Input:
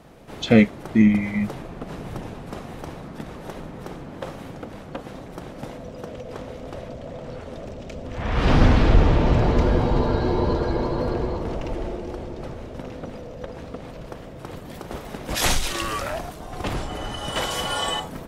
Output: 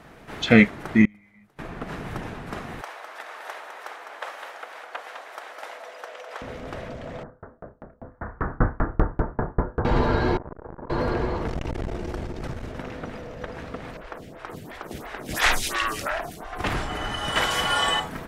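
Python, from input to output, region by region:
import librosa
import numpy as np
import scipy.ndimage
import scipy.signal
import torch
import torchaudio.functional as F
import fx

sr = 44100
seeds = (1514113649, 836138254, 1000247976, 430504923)

y = fx.chain(x, sr, fx.gate_flip(shuts_db=-22.0, range_db=-31),
    fx.high_shelf(hz=8600.0, db=11.5), at=(1.05, 1.59))
y = fx.chain(y, sr, fx.highpass(hz=570.0, slope=24),
    fx.echo_single(ms=205, db=-7.0), at=(2.81, 6.42))
y = fx.chain(y, sr, fx.steep_lowpass(hz=1600.0, slope=48),
    fx.doubler(ms=30.0, db=-4.5),
    fx.tremolo_decay(direction='decaying', hz=5.1, depth_db=36), at=(7.23, 9.85))
y = fx.chain(y, sr, fx.lowpass(hz=1200.0, slope=24),
    fx.comb_fb(f0_hz=280.0, decay_s=0.58, harmonics='all', damping=0.0, mix_pct=70),
    fx.transformer_sat(knee_hz=370.0), at=(10.37, 10.9))
y = fx.chain(y, sr, fx.bass_treble(bass_db=6, treble_db=7),
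    fx.transformer_sat(knee_hz=160.0), at=(11.47, 12.72))
y = fx.chain(y, sr, fx.high_shelf(hz=4500.0, db=4.0),
    fx.room_flutter(wall_m=8.8, rt60_s=0.3),
    fx.stagger_phaser(hz=2.9), at=(13.97, 16.59))
y = fx.peak_eq(y, sr, hz=1700.0, db=8.5, octaves=1.4)
y = fx.notch(y, sr, hz=540.0, q=14.0)
y = y * librosa.db_to_amplitude(-1.0)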